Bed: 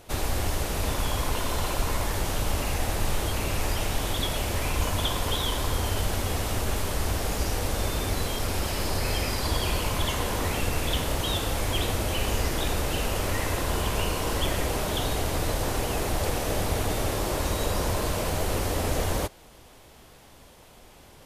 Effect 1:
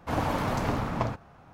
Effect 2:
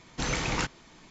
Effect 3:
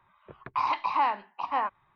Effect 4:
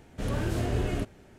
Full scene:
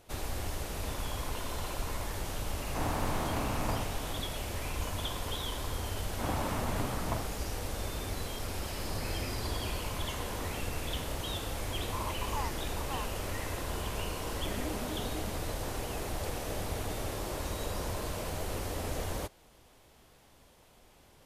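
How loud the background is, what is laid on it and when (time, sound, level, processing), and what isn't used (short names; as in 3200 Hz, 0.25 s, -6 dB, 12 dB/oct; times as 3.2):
bed -9 dB
2.68 add 1 -10 dB + per-bin compression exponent 0.4
6.11 add 1 -7 dB + LPF 4400 Hz
8.64 add 4 -14 dB + Wiener smoothing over 9 samples
11.37 add 3 -13 dB
14.24 add 4 -10.5 dB + arpeggiated vocoder minor triad, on G#3, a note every 80 ms
not used: 2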